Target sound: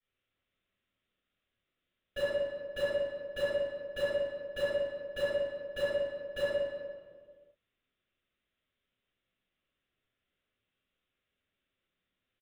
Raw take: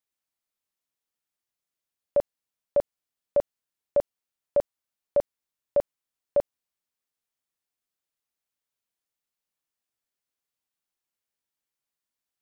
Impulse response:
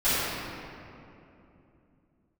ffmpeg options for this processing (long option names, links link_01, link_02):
-filter_complex "[0:a]equalizer=frequency=880:width=2.7:gain=-13.5,aresample=8000,asoftclip=type=tanh:threshold=-35.5dB,aresample=44100,acrusher=bits=5:mode=log:mix=0:aa=0.000001[link_01];[1:a]atrim=start_sample=2205,asetrate=88200,aresample=44100[link_02];[link_01][link_02]afir=irnorm=-1:irlink=0"